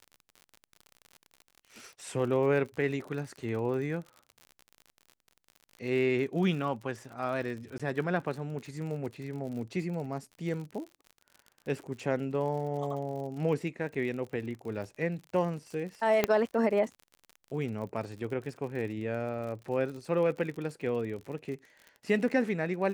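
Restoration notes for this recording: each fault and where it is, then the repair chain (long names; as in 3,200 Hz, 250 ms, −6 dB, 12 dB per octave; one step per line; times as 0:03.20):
surface crackle 56 per second −39 dBFS
0:07.78–0:07.80: drop-out 16 ms
0:16.24: click −10 dBFS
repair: click removal
repair the gap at 0:07.78, 16 ms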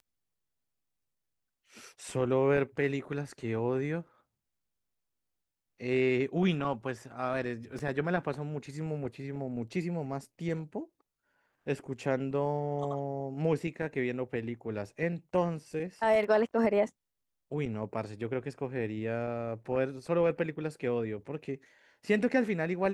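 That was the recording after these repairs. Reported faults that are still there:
0:16.24: click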